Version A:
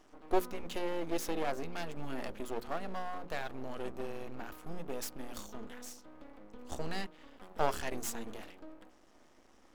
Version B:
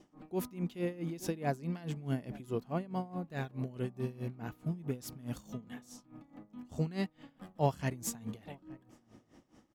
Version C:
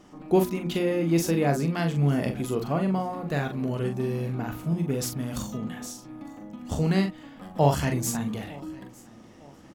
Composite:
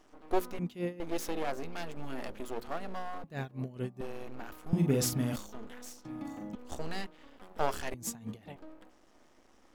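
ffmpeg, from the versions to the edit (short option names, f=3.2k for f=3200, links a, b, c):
-filter_complex "[1:a]asplit=3[a][b][c];[2:a]asplit=2[d][e];[0:a]asplit=6[f][g][h][i][j][k];[f]atrim=end=0.592[l];[a]atrim=start=0.588:end=1.002[m];[g]atrim=start=0.998:end=3.242[n];[b]atrim=start=3.238:end=4.012[o];[h]atrim=start=4.008:end=4.732[p];[d]atrim=start=4.728:end=5.362[q];[i]atrim=start=5.358:end=6.052[r];[e]atrim=start=6.048:end=6.552[s];[j]atrim=start=6.548:end=7.942[t];[c]atrim=start=7.938:end=8.562[u];[k]atrim=start=8.558[v];[l][m]acrossfade=d=0.004:c1=hsin:c2=hsin[w];[w][n]acrossfade=d=0.004:c1=hsin:c2=hsin[x];[x][o]acrossfade=d=0.004:c1=hsin:c2=hsin[y];[y][p]acrossfade=d=0.004:c1=hsin:c2=hsin[z];[z][q]acrossfade=d=0.004:c1=hsin:c2=hsin[aa];[aa][r]acrossfade=d=0.004:c1=hsin:c2=hsin[ab];[ab][s]acrossfade=d=0.004:c1=hsin:c2=hsin[ac];[ac][t]acrossfade=d=0.004:c1=hsin:c2=hsin[ad];[ad][u]acrossfade=d=0.004:c1=hsin:c2=hsin[ae];[ae][v]acrossfade=d=0.004:c1=hsin:c2=hsin"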